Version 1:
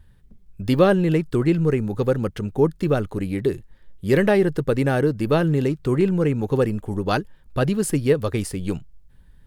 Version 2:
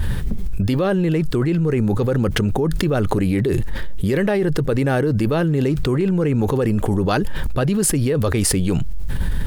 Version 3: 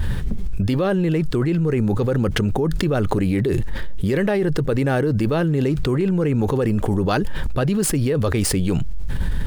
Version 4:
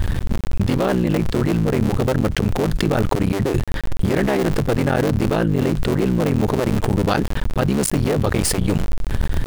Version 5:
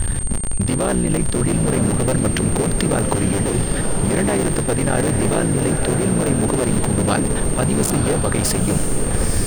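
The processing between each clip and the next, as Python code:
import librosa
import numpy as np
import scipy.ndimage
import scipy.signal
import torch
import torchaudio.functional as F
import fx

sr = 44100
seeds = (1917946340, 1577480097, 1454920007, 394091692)

y1 = fx.env_flatten(x, sr, amount_pct=100)
y1 = F.gain(torch.from_numpy(y1), -6.5).numpy()
y2 = scipy.ndimage.median_filter(y1, 3, mode='constant')
y2 = F.gain(torch.from_numpy(y2), -1.0).numpy()
y3 = fx.cycle_switch(y2, sr, every=3, mode='muted')
y3 = F.gain(torch.from_numpy(y3), 2.5).numpy()
y4 = fx.echo_diffused(y3, sr, ms=935, feedback_pct=41, wet_db=-4.5)
y4 = y4 + 10.0 ** (-25.0 / 20.0) * np.sin(2.0 * np.pi * 8700.0 * np.arange(len(y4)) / sr)
y4 = F.gain(torch.from_numpy(y4), -1.0).numpy()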